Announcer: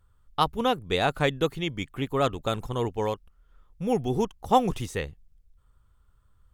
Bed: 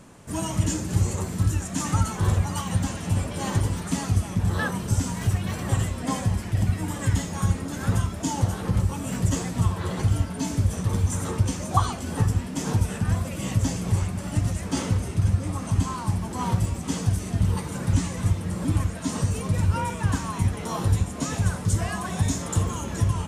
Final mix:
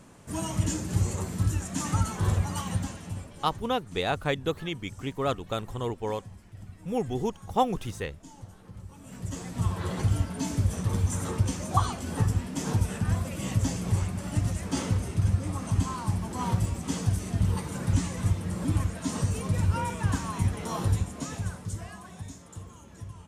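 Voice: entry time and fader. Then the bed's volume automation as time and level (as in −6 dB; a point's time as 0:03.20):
3.05 s, −3.5 dB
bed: 0:02.68 −3.5 dB
0:03.67 −22 dB
0:08.77 −22 dB
0:09.75 −3 dB
0:20.84 −3 dB
0:22.43 −19 dB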